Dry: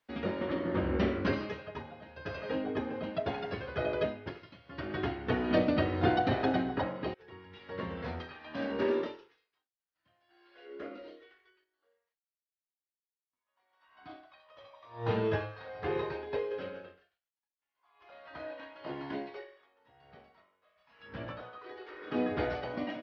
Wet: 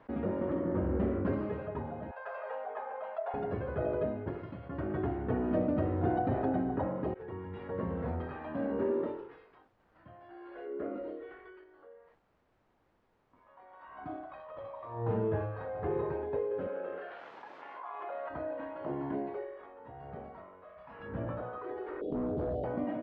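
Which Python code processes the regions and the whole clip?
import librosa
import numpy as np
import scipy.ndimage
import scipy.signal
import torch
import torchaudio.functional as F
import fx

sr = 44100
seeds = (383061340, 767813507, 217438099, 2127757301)

y = fx.chain(x, sr, fx.cheby2_highpass(hz=330.0, order=4, stop_db=40),
    fx.high_shelf(hz=3100.0, db=-9.5), at=(2.11, 3.34))
y = fx.chain(y, sr, fx.bandpass_edges(low_hz=400.0, high_hz=4900.0),
    fx.env_flatten(amount_pct=70), at=(16.67, 18.29))
y = fx.chain(y, sr, fx.ellip_bandstop(low_hz=660.0, high_hz=3400.0, order=3, stop_db=40),
    fx.clip_hard(threshold_db=-33.0),
    fx.env_flatten(amount_pct=50), at=(22.01, 22.64))
y = scipy.signal.sosfilt(scipy.signal.butter(2, 1000.0, 'lowpass', fs=sr, output='sos'), y)
y = fx.low_shelf(y, sr, hz=170.0, db=3.0)
y = fx.env_flatten(y, sr, amount_pct=50)
y = F.gain(torch.from_numpy(y), -4.5).numpy()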